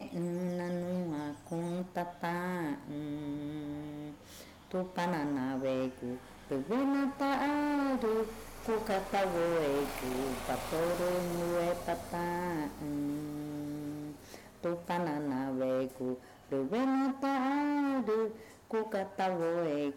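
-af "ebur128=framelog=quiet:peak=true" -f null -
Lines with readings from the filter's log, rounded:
Integrated loudness:
  I:         -34.7 LUFS
  Threshold: -44.9 LUFS
Loudness range:
  LRA:         5.2 LU
  Threshold: -54.9 LUFS
  LRA low:   -38.1 LUFS
  LRA high:  -32.9 LUFS
True peak:
  Peak:      -22.0 dBFS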